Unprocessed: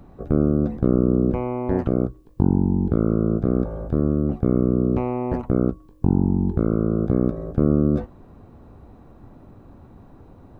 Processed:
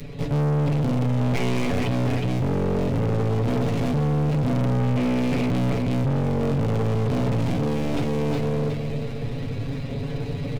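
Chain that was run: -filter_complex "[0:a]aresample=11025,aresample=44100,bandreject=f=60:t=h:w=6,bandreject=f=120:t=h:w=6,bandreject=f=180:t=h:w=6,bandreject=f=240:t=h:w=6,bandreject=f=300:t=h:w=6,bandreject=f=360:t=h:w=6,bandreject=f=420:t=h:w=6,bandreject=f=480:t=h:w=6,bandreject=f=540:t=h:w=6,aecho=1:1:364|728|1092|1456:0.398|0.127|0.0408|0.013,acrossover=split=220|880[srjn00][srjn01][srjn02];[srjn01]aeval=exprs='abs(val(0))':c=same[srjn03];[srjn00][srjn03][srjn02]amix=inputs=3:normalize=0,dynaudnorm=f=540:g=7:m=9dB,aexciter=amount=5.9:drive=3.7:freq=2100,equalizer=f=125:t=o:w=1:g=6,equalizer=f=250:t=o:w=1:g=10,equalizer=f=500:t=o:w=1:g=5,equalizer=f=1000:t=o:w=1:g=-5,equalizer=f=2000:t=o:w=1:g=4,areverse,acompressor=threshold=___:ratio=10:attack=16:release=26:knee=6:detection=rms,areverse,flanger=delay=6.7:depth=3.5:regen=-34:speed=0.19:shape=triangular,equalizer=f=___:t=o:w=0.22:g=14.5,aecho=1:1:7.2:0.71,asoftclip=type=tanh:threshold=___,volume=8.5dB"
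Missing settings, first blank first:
-23dB, 460, -28dB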